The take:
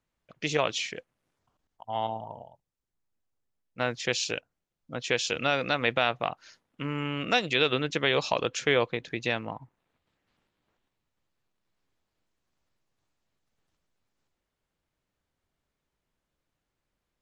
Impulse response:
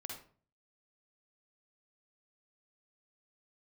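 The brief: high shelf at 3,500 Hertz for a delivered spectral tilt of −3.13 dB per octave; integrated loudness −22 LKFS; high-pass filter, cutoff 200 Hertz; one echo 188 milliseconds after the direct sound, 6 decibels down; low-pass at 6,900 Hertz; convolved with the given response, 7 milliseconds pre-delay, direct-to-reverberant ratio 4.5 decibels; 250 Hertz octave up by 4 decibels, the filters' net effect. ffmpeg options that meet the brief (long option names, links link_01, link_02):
-filter_complex "[0:a]highpass=200,lowpass=6900,equalizer=frequency=250:width_type=o:gain=6.5,highshelf=frequency=3500:gain=5,aecho=1:1:188:0.501,asplit=2[link_01][link_02];[1:a]atrim=start_sample=2205,adelay=7[link_03];[link_02][link_03]afir=irnorm=-1:irlink=0,volume=-2dB[link_04];[link_01][link_04]amix=inputs=2:normalize=0,volume=3dB"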